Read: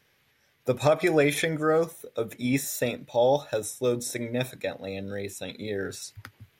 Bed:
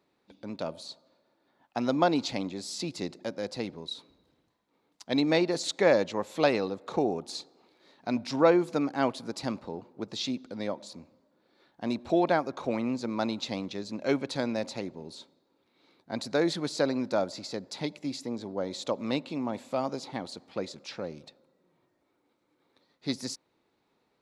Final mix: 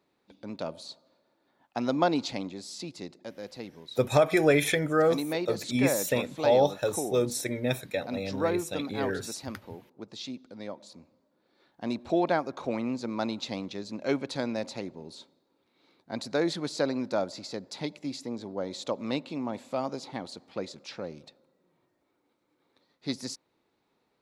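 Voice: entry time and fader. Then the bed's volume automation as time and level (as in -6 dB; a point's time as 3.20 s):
3.30 s, 0.0 dB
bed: 2.16 s -0.5 dB
3.13 s -6.5 dB
10.60 s -6.5 dB
11.74 s -1 dB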